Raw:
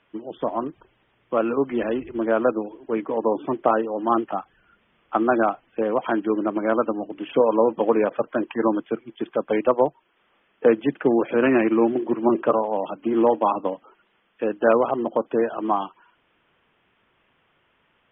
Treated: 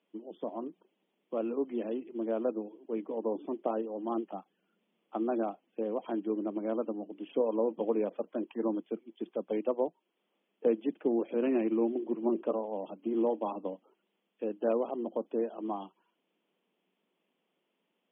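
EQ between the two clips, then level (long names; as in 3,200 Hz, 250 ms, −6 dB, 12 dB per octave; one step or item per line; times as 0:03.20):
elliptic high-pass filter 180 Hz
parametric band 1,500 Hz −15 dB 1.5 octaves
−8.0 dB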